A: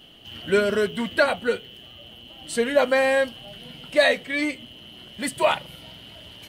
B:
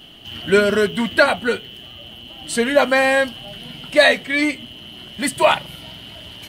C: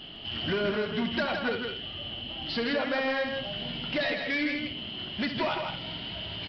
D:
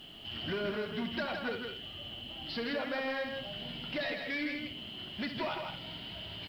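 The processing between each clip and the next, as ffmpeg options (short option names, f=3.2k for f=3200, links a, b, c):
-af "equalizer=f=500:w=4.9:g=-6.5,volume=6.5dB"
-af "acompressor=threshold=-22dB:ratio=6,aresample=11025,asoftclip=type=tanh:threshold=-23.5dB,aresample=44100,aecho=1:1:68|162|225:0.316|0.531|0.15,volume=-1dB"
-af "acrusher=bits=9:mix=0:aa=0.000001,volume=-6.5dB"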